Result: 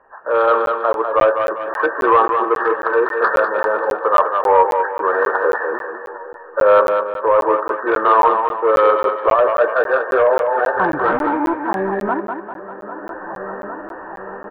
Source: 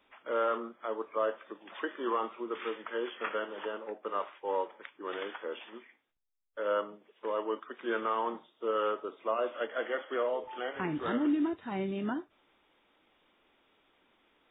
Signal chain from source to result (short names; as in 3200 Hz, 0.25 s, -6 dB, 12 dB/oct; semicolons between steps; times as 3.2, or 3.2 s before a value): nonlinear frequency compression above 1500 Hz 4:1; doubler 15 ms -10 dB; in parallel at -2.5 dB: compressor, threshold -40 dBFS, peak gain reduction 14.5 dB; on the sum: low-pass opened by the level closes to 1100 Hz, open at -25.5 dBFS; feedback echo 0.804 s, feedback 59%, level -21.5 dB; dynamic EQ 300 Hz, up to +5 dB, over -36 dBFS, Q 1.8; sine folder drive 13 dB, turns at -7 dBFS; on a send: thinning echo 0.198 s, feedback 44%, high-pass 170 Hz, level -6 dB; on the sum: AGC gain up to 16 dB; graphic EQ 250/500/1000 Hz -12/+6/+8 dB; crackling interface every 0.27 s, samples 512, zero, from 0.66; gain -8.5 dB